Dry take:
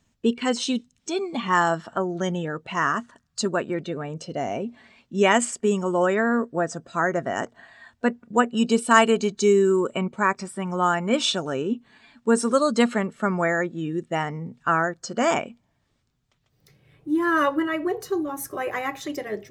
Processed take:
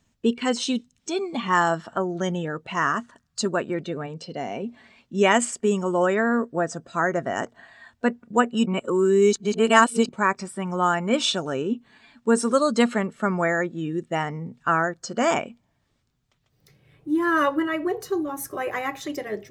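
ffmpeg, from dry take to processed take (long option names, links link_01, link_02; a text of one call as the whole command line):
ffmpeg -i in.wav -filter_complex "[0:a]asplit=3[link_01][link_02][link_03];[link_01]afade=type=out:start_time=4.06:duration=0.02[link_04];[link_02]highpass=150,equalizer=frequency=320:width_type=q:width=4:gain=-4,equalizer=frequency=620:width_type=q:width=4:gain=-6,equalizer=frequency=1300:width_type=q:width=4:gain=-4,equalizer=frequency=4500:width_type=q:width=4:gain=6,equalizer=frequency=6400:width_type=q:width=4:gain=-8,lowpass=frequency=8100:width=0.5412,lowpass=frequency=8100:width=1.3066,afade=type=in:start_time=4.06:duration=0.02,afade=type=out:start_time=4.62:duration=0.02[link_05];[link_03]afade=type=in:start_time=4.62:duration=0.02[link_06];[link_04][link_05][link_06]amix=inputs=3:normalize=0,asplit=3[link_07][link_08][link_09];[link_07]atrim=end=8.662[link_10];[link_08]atrim=start=8.658:end=10.092,asetpts=PTS-STARTPTS,areverse[link_11];[link_09]atrim=start=10.088[link_12];[link_10][link_11]acrossfade=duration=0.004:curve1=hsin:curve2=hsin[link_13];[link_13][link_12]acrossfade=duration=0.004:curve1=hsin:curve2=hsin" out.wav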